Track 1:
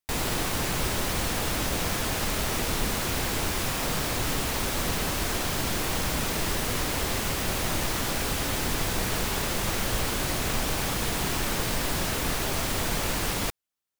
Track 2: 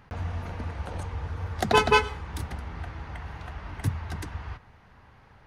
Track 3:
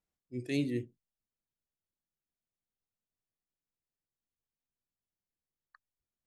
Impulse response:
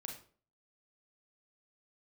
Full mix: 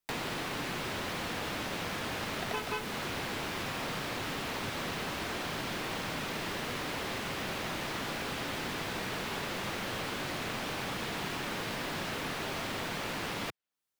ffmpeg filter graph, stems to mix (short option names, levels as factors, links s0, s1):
-filter_complex "[0:a]volume=1[s0];[1:a]adelay=800,volume=0.501[s1];[2:a]volume=0.355[s2];[s0][s1][s2]amix=inputs=3:normalize=0,acrossover=split=110|1100|4400[s3][s4][s5][s6];[s3]acompressor=threshold=0.00112:ratio=4[s7];[s4]acompressor=threshold=0.0126:ratio=4[s8];[s5]acompressor=threshold=0.0126:ratio=4[s9];[s6]acompressor=threshold=0.00224:ratio=4[s10];[s7][s8][s9][s10]amix=inputs=4:normalize=0"